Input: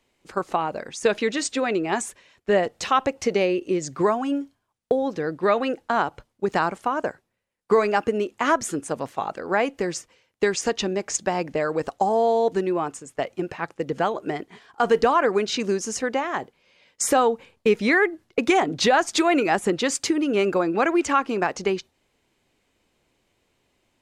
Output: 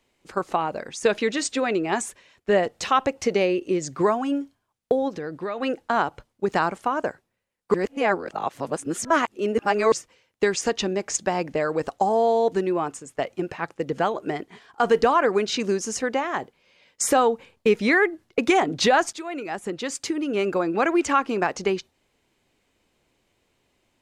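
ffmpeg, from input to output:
-filter_complex "[0:a]asplit=3[a][b][c];[a]afade=t=out:st=5.08:d=0.02[d];[b]acompressor=threshold=-29dB:ratio=3:attack=3.2:release=140:knee=1:detection=peak,afade=t=in:st=5.08:d=0.02,afade=t=out:st=5.61:d=0.02[e];[c]afade=t=in:st=5.61:d=0.02[f];[d][e][f]amix=inputs=3:normalize=0,asplit=4[g][h][i][j];[g]atrim=end=7.742[k];[h]atrim=start=7.738:end=9.922,asetpts=PTS-STARTPTS,areverse[l];[i]atrim=start=9.918:end=19.13,asetpts=PTS-STARTPTS,afade=t=out:st=9.208:d=0.004:c=hsin:silence=0.149624[m];[j]atrim=start=19.13,asetpts=PTS-STARTPTS,afade=t=in:d=1.85:silence=0.149624[n];[k][l]acrossfade=d=0.004:c1=hsin:c2=hsin[o];[m][n]concat=n=2:v=0:a=1[p];[o][p]acrossfade=d=0.004:c1=hsin:c2=hsin"

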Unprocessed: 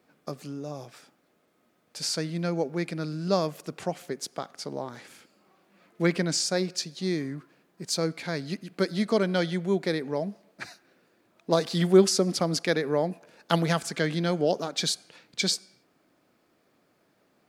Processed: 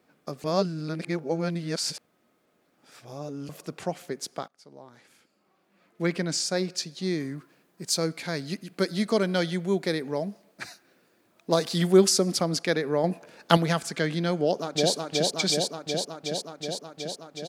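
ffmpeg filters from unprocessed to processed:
-filter_complex "[0:a]asettb=1/sr,asplit=3[a][b][c];[a]atrim=end=7.204[d];[b]atrim=start=7.2:end=12.41,asetpts=PTS-STARTPTS,afade=t=in:d=0.004:c=qsin,afade=t=out:st=5.206:d=0.004:c=qsin,highshelf=f=6.2k:g=7[e];[c]atrim=start=12.406[f];[d][e]acrossfade=d=0.004:c1=hsin:c2=qsin[g];[g][f]acrossfade=d=0.004:c1=qsin:c2=hsin,asplit=2[h][i];[i]afade=t=in:st=14.38:d=0.01,afade=t=out:st=14.93:d=0.01,aecho=0:1:370|740|1110|1480|1850|2220|2590|2960|3330|3700|4070|4440:0.891251|0.713001|0.570401|0.45632|0.365056|0.292045|0.233636|0.186909|0.149527|0.119622|0.0956973|0.0765579[j];[h][j]amix=inputs=2:normalize=0,asplit=6[k][l][m][n][o][p];[k]atrim=end=0.442[q];[l]atrim=start=0.438:end=3.492,asetpts=PTS-STARTPTS,areverse[r];[m]atrim=start=3.488:end=4.48,asetpts=PTS-STARTPTS,afade=t=out:st=0.988:d=0.004:c=hsin:silence=0.0841395[s];[n]atrim=start=4.48:end=13.042,asetpts=PTS-STARTPTS,afade=t=in:d=2.2:silence=0.0841395[t];[o]atrim=start=13.038:end=13.572,asetpts=PTS-STARTPTS,volume=5dB[u];[p]atrim=start=13.568[v];[q][r]acrossfade=d=0.004:c1=hsin:c2=hsin[w];[s][t]concat=n=2:v=0:a=1[x];[w][x]acrossfade=d=0.004:c1=hsin:c2=hsin[y];[y][u]acrossfade=d=0.004:c1=hsin:c2=hsin[z];[z][v]acrossfade=d=0.004:c1=hsin:c2=hsin"

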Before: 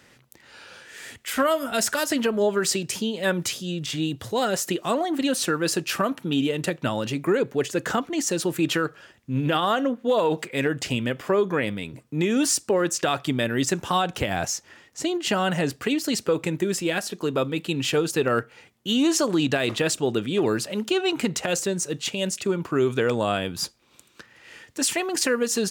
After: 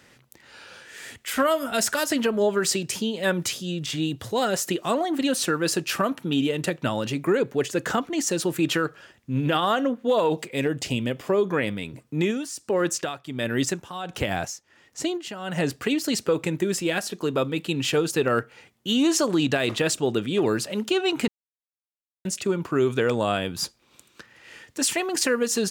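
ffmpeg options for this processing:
-filter_complex "[0:a]asettb=1/sr,asplit=3[a][b][c];[a]atrim=end=10.304[d];[b]atrim=start=10.3:end=11.45,asetpts=PTS-STARTPTS,afade=t=in:d=0.004:c=qsin,afade=t=out:st=1.146:d=0.004:c=qsin,equalizer=f=1.5k:t=o:w=1:g=-6.5[e];[c]atrim=start=11.446[f];[d][e]acrossfade=d=0.004:c1=hsin:c2=qsin[g];[g][f]acrossfade=d=0.004:c1=qsin:c2=hsin,asplit=3[h][i][j];[h]afade=t=out:st=12.3:d=0.02[k];[i]tremolo=f=1.4:d=0.79,afade=t=in:st=12.3:d=0.02,afade=t=out:st=15.56:d=0.02[l];[j]afade=t=in:st=15.56:d=0.02[m];[k][l][m]amix=inputs=3:normalize=0,asplit=3[n][o][p];[n]atrim=end=21.28,asetpts=PTS-STARTPTS,afade=t=out:st=21.276:d=0.004:c=hsin[q];[o]atrim=start=21.28:end=22.25,asetpts=PTS-STARTPTS,volume=0[r];[p]atrim=start=22.25,asetpts=PTS-STARTPTS,afade=t=in:d=0.004:c=hsin[s];[q][r][s]concat=n=3:v=0:a=1"

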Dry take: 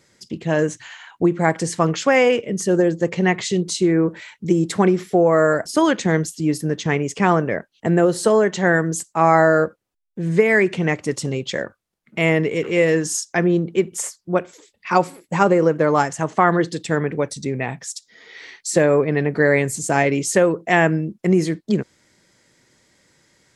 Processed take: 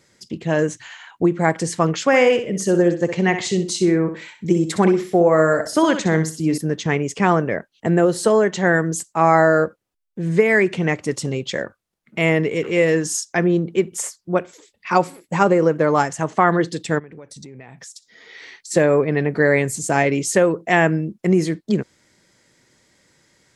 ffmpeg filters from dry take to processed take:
-filter_complex "[0:a]asettb=1/sr,asplit=3[a][b][c];[a]atrim=end=2.064[d];[b]atrim=start=2.06:end=6.58,asetpts=PTS-STARTPTS,afade=t=in:d=0.004:c=qsin,afade=t=out:st=4.516:d=0.004:c=qsin,aecho=1:1:63|126|189:0.335|0.0871|0.0226,atrim=end_sample=199332[e];[c]atrim=start=6.576[f];[d][e]acrossfade=d=0.004:c1=hsin:c2=qsin[g];[g][f]acrossfade=d=0.004:c1=qsin:c2=hsin,asplit=3[h][i][j];[h]afade=t=out:st=16.98:d=0.02[k];[i]acompressor=threshold=-35dB:ratio=12:attack=3.2:release=140:knee=1:detection=peak,afade=t=in:st=16.98:d=0.02,afade=t=out:st=18.7:d=0.02[l];[j]afade=t=in:st=18.7:d=0.02[m];[k][l][m]amix=inputs=3:normalize=0"

